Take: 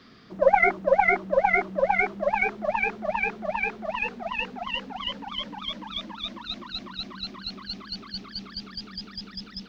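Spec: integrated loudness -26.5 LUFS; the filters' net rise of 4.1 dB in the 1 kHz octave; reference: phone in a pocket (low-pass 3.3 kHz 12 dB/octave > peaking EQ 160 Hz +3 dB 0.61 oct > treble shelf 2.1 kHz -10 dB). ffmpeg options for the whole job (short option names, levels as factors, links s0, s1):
-af "lowpass=3300,equalizer=f=160:t=o:w=0.61:g=3,equalizer=f=1000:t=o:g=7.5,highshelf=f=2100:g=-10,volume=0.75"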